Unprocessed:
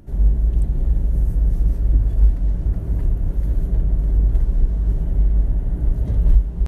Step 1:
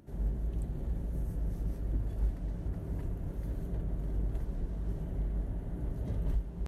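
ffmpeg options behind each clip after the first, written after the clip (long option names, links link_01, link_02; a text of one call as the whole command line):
ffmpeg -i in.wav -af "highpass=frequency=150:poles=1,volume=-7.5dB" out.wav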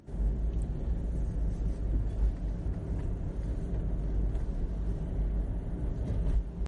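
ffmpeg -i in.wav -af "volume=3dB" -ar 44100 -c:a libmp3lame -b:a 40k out.mp3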